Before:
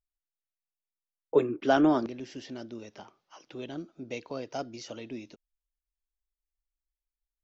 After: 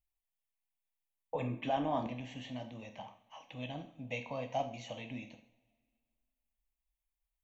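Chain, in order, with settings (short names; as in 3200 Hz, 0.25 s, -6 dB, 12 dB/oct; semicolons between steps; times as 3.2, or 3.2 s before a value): limiter -22 dBFS, peak gain reduction 11 dB; fixed phaser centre 1400 Hz, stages 6; two-slope reverb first 0.5 s, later 2 s, from -22 dB, DRR 5 dB; gain +1.5 dB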